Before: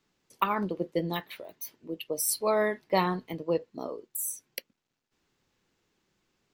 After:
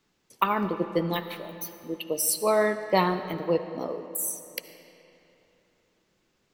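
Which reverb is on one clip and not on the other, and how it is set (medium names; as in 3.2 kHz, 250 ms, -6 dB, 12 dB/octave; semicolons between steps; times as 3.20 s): algorithmic reverb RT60 3.2 s, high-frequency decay 0.7×, pre-delay 35 ms, DRR 10 dB; trim +3 dB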